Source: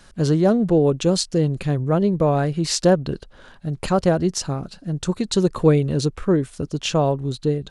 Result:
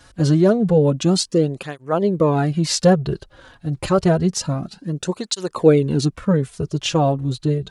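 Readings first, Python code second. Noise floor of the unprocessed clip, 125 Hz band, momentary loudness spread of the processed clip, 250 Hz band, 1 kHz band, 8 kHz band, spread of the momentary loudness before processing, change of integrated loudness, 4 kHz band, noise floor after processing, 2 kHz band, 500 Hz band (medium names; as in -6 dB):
-48 dBFS, +1.5 dB, 11 LU, +1.5 dB, +1.5 dB, +1.5 dB, 11 LU, +1.5 dB, +2.0 dB, -55 dBFS, +1.5 dB, +1.5 dB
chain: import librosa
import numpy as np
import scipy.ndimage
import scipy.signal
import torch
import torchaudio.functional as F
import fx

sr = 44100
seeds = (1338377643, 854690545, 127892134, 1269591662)

y = fx.flanger_cancel(x, sr, hz=0.28, depth_ms=5.2)
y = y * 10.0 ** (4.5 / 20.0)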